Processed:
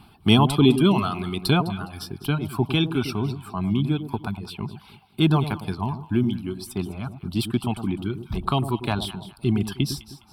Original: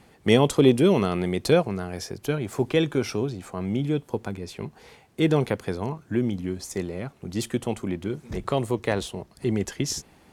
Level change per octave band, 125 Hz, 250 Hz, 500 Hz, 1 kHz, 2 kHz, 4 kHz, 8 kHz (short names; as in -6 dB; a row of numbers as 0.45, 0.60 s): +4.5, +2.5, -5.0, +4.5, +0.5, +5.5, -4.5 dB